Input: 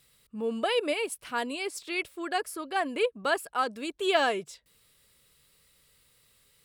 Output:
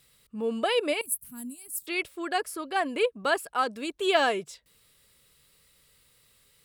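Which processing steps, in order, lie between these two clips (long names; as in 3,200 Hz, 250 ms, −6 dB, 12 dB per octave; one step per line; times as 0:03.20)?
0:01.01–0:01.87: drawn EQ curve 240 Hz 0 dB, 370 Hz −27 dB, 3,300 Hz −25 dB, 5,300 Hz −16 dB, 12,000 Hz +15 dB
level +1.5 dB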